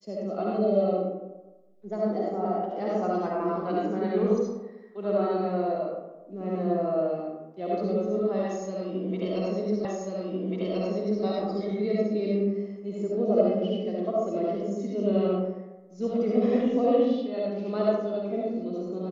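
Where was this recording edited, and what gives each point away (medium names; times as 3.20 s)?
9.85 s: repeat of the last 1.39 s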